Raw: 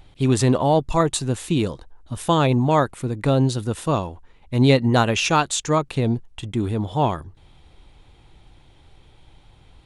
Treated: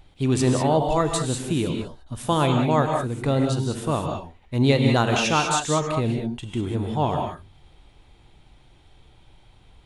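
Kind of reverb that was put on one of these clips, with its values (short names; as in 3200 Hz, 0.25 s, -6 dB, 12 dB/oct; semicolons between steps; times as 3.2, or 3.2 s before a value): non-linear reverb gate 0.22 s rising, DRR 2.5 dB; gain -3.5 dB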